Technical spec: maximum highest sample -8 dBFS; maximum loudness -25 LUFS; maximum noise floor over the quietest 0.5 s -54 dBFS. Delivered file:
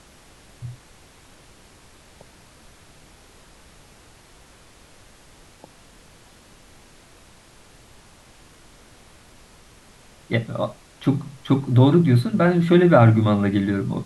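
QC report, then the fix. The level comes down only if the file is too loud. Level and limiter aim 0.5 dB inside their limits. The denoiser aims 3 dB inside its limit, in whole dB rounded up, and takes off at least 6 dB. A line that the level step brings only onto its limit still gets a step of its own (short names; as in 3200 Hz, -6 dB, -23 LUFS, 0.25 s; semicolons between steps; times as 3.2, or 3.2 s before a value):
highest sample -3.5 dBFS: fail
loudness -19.0 LUFS: fail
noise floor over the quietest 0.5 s -50 dBFS: fail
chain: gain -6.5 dB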